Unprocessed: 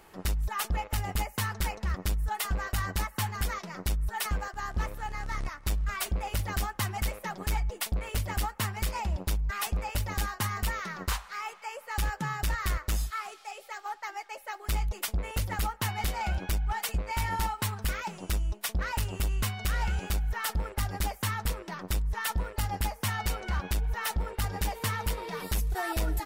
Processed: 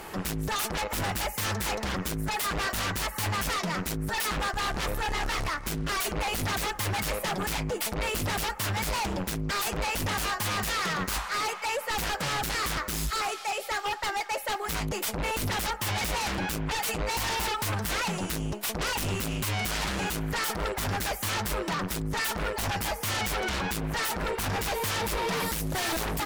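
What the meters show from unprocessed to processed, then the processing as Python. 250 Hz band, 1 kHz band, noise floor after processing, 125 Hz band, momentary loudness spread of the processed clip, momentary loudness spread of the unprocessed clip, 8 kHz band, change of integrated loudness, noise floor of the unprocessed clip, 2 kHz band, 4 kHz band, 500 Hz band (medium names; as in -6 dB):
+6.5 dB, +4.0 dB, -39 dBFS, -1.5 dB, 2 LU, 5 LU, +5.0 dB, +3.0 dB, -52 dBFS, +5.5 dB, +7.0 dB, +8.0 dB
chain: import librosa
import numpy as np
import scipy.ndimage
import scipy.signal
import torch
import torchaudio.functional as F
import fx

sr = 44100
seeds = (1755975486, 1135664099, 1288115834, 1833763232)

p1 = fx.low_shelf(x, sr, hz=69.0, db=-5.5)
p2 = fx.fold_sine(p1, sr, drive_db=16, ceiling_db=-21.0)
p3 = p1 + F.gain(torch.from_numpy(p2), -5.0).numpy()
y = F.gain(torch.from_numpy(p3), -2.0).numpy()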